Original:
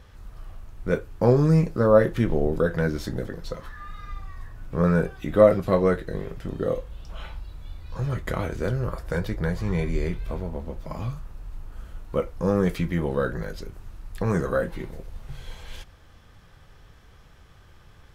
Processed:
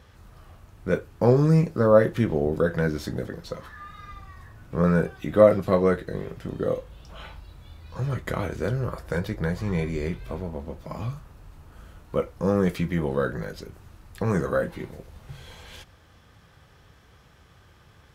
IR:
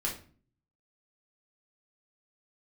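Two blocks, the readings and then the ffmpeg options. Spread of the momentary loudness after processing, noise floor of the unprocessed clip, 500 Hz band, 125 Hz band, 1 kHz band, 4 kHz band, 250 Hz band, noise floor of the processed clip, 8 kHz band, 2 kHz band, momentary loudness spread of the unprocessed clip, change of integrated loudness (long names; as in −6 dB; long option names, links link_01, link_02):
24 LU, −52 dBFS, 0.0 dB, −0.5 dB, 0.0 dB, 0.0 dB, 0.0 dB, −55 dBFS, can't be measured, 0.0 dB, 23 LU, 0.0 dB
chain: -af "highpass=68"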